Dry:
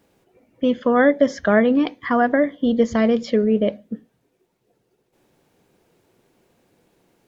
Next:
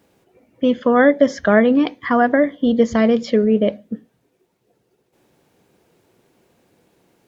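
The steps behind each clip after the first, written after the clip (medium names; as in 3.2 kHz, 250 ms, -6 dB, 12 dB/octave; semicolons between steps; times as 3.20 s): high-pass 42 Hz; trim +2.5 dB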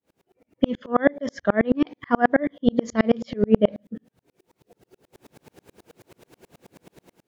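level rider gain up to 15 dB; sawtooth tremolo in dB swelling 9.3 Hz, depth 38 dB; trim +1 dB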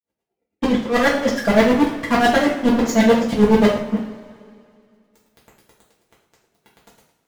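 waveshaping leveller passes 5; two-slope reverb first 0.47 s, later 2.3 s, from -18 dB, DRR -6 dB; trim -12 dB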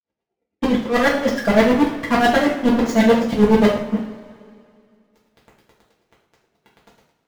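median filter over 5 samples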